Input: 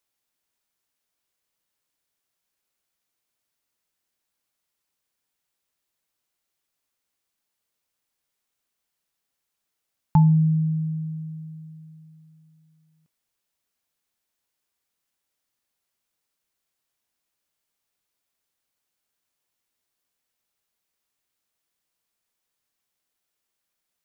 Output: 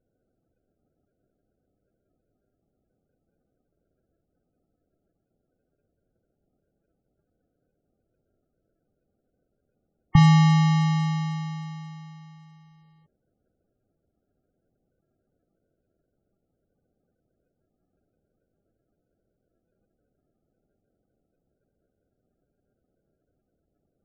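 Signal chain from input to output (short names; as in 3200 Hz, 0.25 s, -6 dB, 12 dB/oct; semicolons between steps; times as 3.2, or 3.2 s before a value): in parallel at +2.5 dB: compressor, threshold -26 dBFS, peak gain reduction 12.5 dB; on the sum: sample-rate reducer 1000 Hz, jitter 0%; loudest bins only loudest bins 32; gain -1.5 dB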